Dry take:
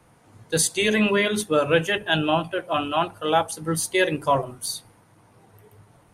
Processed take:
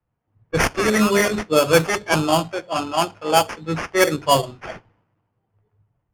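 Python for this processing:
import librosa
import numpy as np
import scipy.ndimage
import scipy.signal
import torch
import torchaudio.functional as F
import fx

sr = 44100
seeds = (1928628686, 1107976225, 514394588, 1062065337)

y = fx.sample_hold(x, sr, seeds[0], rate_hz=3900.0, jitter_pct=0)
y = fx.env_lowpass(y, sr, base_hz=2200.0, full_db=-15.5)
y = fx.band_widen(y, sr, depth_pct=70)
y = y * 10.0 ** (3.0 / 20.0)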